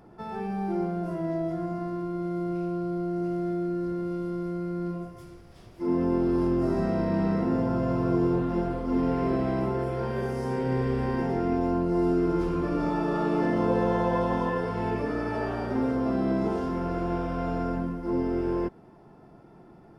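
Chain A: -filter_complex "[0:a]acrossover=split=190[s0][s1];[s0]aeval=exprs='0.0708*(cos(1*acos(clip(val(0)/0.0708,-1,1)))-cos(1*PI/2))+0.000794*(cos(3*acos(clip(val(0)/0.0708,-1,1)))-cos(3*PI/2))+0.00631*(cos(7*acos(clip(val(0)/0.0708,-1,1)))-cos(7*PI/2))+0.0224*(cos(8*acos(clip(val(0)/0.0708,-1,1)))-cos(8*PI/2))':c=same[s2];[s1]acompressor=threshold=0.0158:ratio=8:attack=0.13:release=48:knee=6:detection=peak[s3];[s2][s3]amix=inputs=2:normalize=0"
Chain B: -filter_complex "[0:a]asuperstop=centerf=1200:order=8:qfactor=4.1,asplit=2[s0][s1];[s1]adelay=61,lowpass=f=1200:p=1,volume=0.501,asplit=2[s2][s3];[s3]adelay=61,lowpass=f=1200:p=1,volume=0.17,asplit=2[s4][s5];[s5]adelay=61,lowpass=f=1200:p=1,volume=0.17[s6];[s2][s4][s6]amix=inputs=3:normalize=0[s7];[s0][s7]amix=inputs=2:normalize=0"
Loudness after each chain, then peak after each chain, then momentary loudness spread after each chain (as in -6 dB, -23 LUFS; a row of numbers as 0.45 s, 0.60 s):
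-33.5 LUFS, -26.5 LUFS; -19.5 dBFS, -11.5 dBFS; 6 LU, 10 LU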